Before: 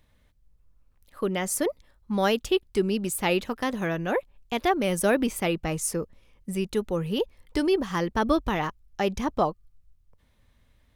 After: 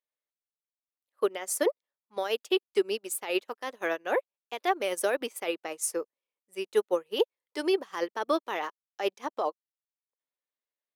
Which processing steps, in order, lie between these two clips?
high-pass filter 370 Hz 24 dB per octave
brickwall limiter −20.5 dBFS, peak gain reduction 10 dB
expander for the loud parts 2.5 to 1, over −48 dBFS
level +6.5 dB

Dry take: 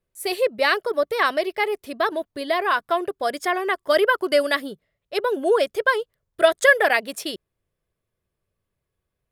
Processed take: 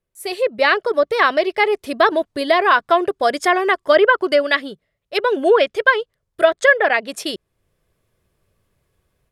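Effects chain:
treble cut that deepens with the level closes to 2,900 Hz, closed at −13.5 dBFS
0:04.41–0:06.01: dynamic equaliser 2,500 Hz, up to +6 dB, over −37 dBFS, Q 0.84
automatic gain control gain up to 14 dB
level −1 dB

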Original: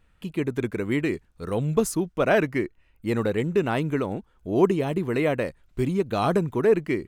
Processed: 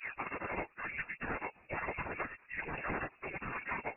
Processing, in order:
turntable start at the beginning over 0.48 s
downward compressor 4 to 1, threshold −29 dBFS, peak gain reduction 13.5 dB
gate on every frequency bin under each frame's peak −20 dB weak
time stretch by phase vocoder 0.56×
voice inversion scrambler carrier 2,700 Hz
level +13 dB

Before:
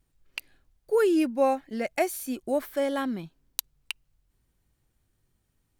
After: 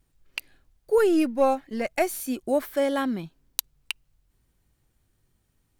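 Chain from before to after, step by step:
0:00.98–0:02.20: gain on one half-wave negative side −3 dB
level +3 dB

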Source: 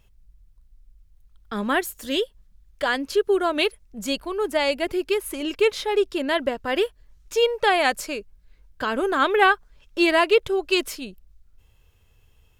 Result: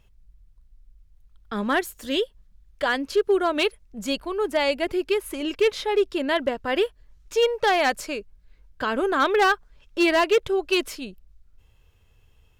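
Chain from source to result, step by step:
high-shelf EQ 7,100 Hz −6 dB
gain into a clipping stage and back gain 13.5 dB

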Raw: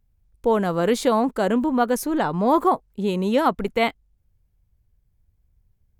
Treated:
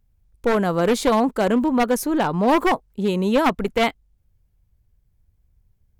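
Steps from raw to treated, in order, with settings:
wavefolder on the positive side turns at −16.5 dBFS
level +2 dB

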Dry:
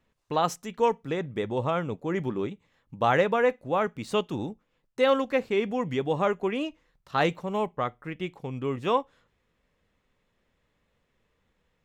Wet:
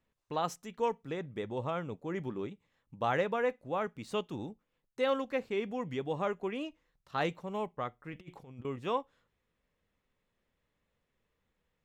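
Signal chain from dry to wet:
0:08.12–0:08.65: compressor whose output falls as the input rises −39 dBFS, ratio −0.5
level −8 dB

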